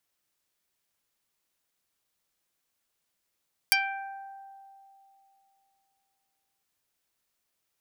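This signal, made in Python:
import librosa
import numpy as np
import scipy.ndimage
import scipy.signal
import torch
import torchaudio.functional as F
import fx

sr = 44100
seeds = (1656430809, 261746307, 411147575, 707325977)

y = fx.pluck(sr, length_s=2.91, note=79, decay_s=2.95, pick=0.19, brightness='dark')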